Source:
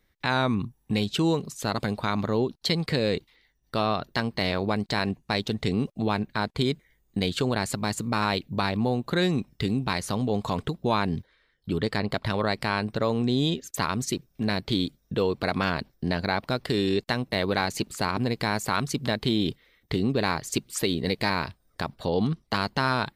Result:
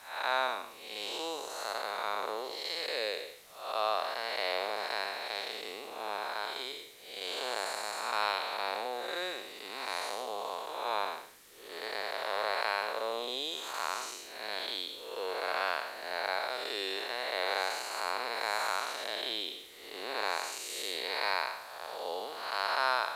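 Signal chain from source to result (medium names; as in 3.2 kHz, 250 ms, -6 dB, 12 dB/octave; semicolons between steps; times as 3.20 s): spectral blur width 289 ms; high-pass 550 Hz 24 dB/octave; added noise white -58 dBFS; resampled via 32 kHz; trim +1 dB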